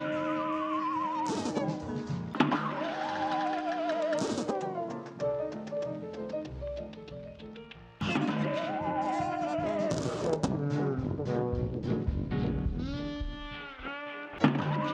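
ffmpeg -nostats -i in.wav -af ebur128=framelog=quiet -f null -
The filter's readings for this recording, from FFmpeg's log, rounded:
Integrated loudness:
  I:         -32.5 LUFS
  Threshold: -42.8 LUFS
Loudness range:
  LRA:         4.5 LU
  Threshold: -52.9 LUFS
  LRA low:   -36.1 LUFS
  LRA high:  -31.6 LUFS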